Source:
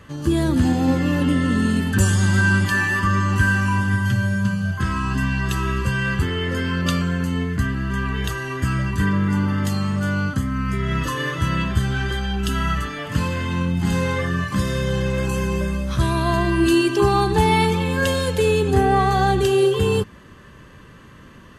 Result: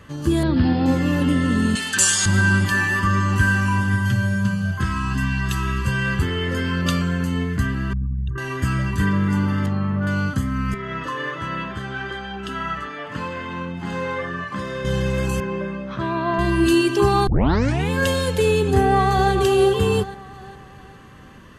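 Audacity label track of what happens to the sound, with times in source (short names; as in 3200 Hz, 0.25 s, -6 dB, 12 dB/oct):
0.430000	0.860000	steep low-pass 5200 Hz 96 dB/oct
1.750000	2.260000	weighting filter ITU-R 468
4.850000	5.880000	bell 490 Hz -9 dB 0.92 oct
7.930000	8.380000	formant sharpening exponent 3
9.660000	10.070000	LPF 1800 Hz
10.740000	14.850000	band-pass 900 Hz, Q 0.51
15.400000	16.390000	BPF 200–2300 Hz
17.270000	17.270000	tape start 0.63 s
18.770000	19.320000	echo throw 0.41 s, feedback 45%, level -9 dB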